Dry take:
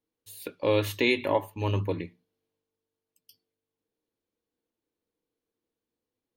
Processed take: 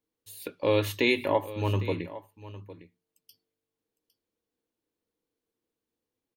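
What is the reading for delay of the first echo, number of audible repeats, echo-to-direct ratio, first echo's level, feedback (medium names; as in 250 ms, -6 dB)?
807 ms, 1, -16.0 dB, -16.0 dB, no regular repeats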